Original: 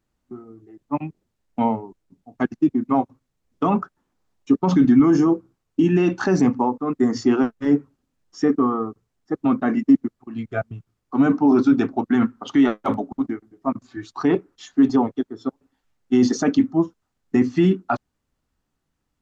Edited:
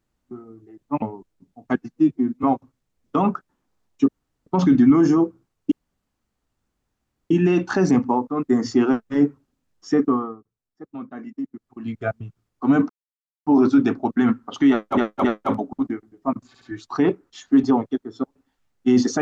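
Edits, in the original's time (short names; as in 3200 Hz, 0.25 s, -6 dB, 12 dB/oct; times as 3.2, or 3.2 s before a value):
1.02–1.72 cut
2.46–2.91 stretch 1.5×
4.56 insert room tone 0.38 s
5.81 insert room tone 1.59 s
8.6–10.31 dip -15 dB, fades 0.27 s
11.4 insert silence 0.57 s
12.64–12.91 loop, 3 plays
13.87 stutter 0.07 s, 3 plays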